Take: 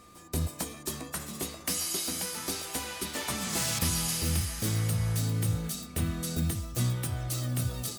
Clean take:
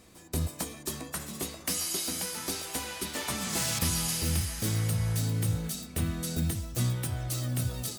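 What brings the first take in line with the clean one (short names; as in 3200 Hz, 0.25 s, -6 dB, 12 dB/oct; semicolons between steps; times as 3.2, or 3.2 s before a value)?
notch 1200 Hz, Q 30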